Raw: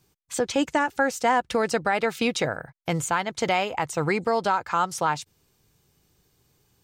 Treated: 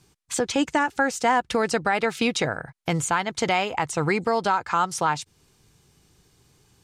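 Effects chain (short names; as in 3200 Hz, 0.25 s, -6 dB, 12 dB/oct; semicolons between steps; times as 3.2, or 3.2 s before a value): LPF 12000 Hz 24 dB/oct; bell 560 Hz -3.5 dB 0.48 oct; in parallel at +0.5 dB: compressor, threshold -36 dBFS, peak gain reduction 16.5 dB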